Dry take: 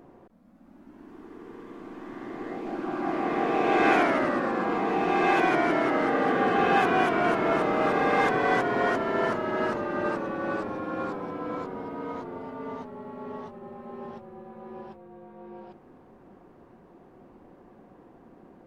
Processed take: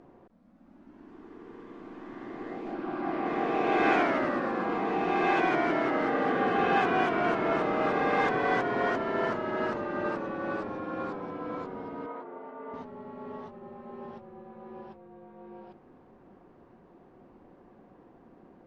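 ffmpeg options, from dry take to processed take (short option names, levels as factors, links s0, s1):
-filter_complex "[0:a]asettb=1/sr,asplit=3[s0][s1][s2];[s0]atrim=end=2.734[s3];[s1]atrim=start=2.73:end=3.26,asetpts=PTS-STARTPTS,afade=t=in:d=0.004:c=qsin,afade=t=out:st=0.526:d=0.004:c=qsin,equalizer=f=6800:t=o:w=0.51:g=-8[s4];[s2]atrim=start=3.256[s5];[s3][s4]acrossfade=d=0.004:c1=hsin:c2=qsin[s6];[s6][s5]acrossfade=d=0.004:c1=qsin:c2=hsin,asettb=1/sr,asplit=3[s7][s8][s9];[s7]atrim=end=12.064[s10];[s8]atrim=start=12.06:end=12.74,asetpts=PTS-STARTPTS,afade=t=in:d=0.004:c=qsin,afade=t=out:st=0.676:d=0.004:c=qsin,highpass=350,lowpass=2100[s11];[s9]atrim=start=12.736[s12];[s10][s11]acrossfade=d=0.004:c1=hsin:c2=qsin[s13];[s13][s12]acrossfade=d=0.004:c1=qsin:c2=hsin,lowpass=5800,volume=0.708"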